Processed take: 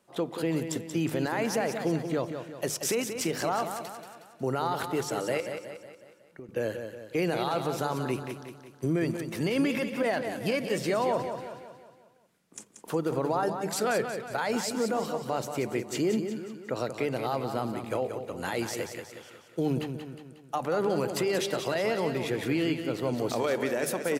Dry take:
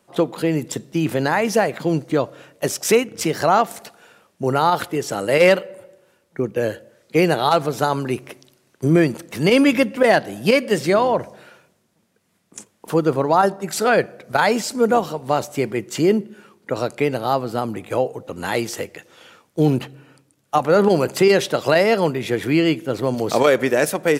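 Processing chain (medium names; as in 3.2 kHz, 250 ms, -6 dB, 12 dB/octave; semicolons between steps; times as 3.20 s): hum notches 50/100/150/200 Hz; peak limiter -12.5 dBFS, peak gain reduction 9 dB; 5.40–6.49 s: compression 2:1, threshold -47 dBFS, peak gain reduction 15.5 dB; feedback delay 182 ms, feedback 49%, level -8 dB; trim -7 dB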